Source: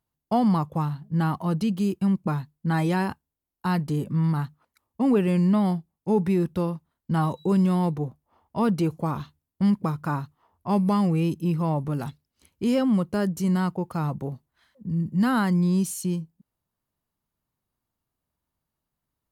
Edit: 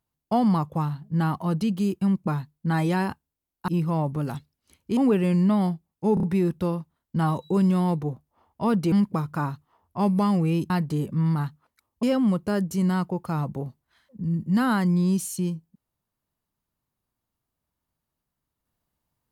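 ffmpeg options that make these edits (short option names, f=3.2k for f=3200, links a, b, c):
-filter_complex "[0:a]asplit=9[a][b][c][d][e][f][g][h][i];[a]atrim=end=3.682[j];[b]atrim=start=11.398:end=12.692[k];[c]atrim=start=5.008:end=6.212[l];[d]atrim=start=6.178:end=6.212[m];[e]atrim=start=6.178:end=6.212[n];[f]atrim=start=6.178:end=8.872[o];[g]atrim=start=9.618:end=11.402[p];[h]atrim=start=3.678:end=5.012[q];[i]atrim=start=12.688[r];[j][k]acrossfade=d=0.004:c1=hsin:c2=hsin[s];[s][l]acrossfade=d=0.004:c1=hsin:c2=hsin[t];[t][m]acrossfade=d=0.004:c1=hsin:c2=hsin[u];[u][n]acrossfade=d=0.004:c1=hsin:c2=hsin[v];[v][o]acrossfade=d=0.004:c1=hsin:c2=hsin[w];[w][p]acrossfade=d=0.004:c1=hsin:c2=hsin[x];[x][q]acrossfade=d=0.004:c1=hsin:c2=hsin[y];[y][r]acrossfade=d=0.004:c1=hsin:c2=hsin"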